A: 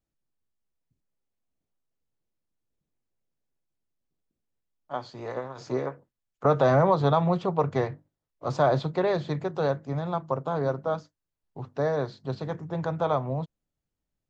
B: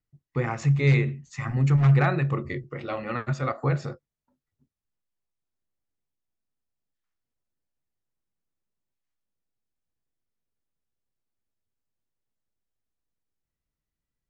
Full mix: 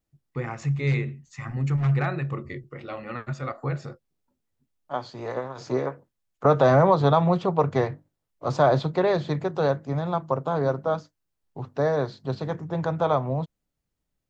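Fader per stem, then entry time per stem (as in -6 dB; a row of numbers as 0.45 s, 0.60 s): +3.0 dB, -4.0 dB; 0.00 s, 0.00 s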